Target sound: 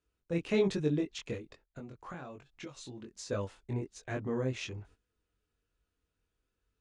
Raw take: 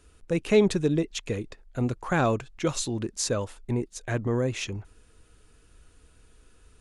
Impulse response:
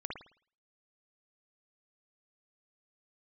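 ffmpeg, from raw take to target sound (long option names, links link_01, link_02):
-filter_complex "[0:a]highpass=frequency=43:poles=1,agate=range=-16dB:threshold=-50dB:ratio=16:detection=peak,lowpass=6200,asettb=1/sr,asplit=3[link_01][link_02][link_03];[link_01]atrim=end=1.354[link_04];[link_02]atrim=start=1.35:end=3.31,asetpts=PTS-STARTPTS,afade=type=in:duration=0.004:curve=qsin,afade=type=out:start_time=1.956:duration=0.004:curve=qsin,acompressor=threshold=-35dB:ratio=16[link_05];[link_03]atrim=start=3.306[link_06];[link_04][link_05]acrossfade=duration=0.004:curve1=hsin:curve2=qsin[link_07];[link_07][link_06]acrossfade=duration=0.004:curve1=qsin:curve2=hsin,flanger=delay=20:depth=3.5:speed=1.2,volume=-4dB"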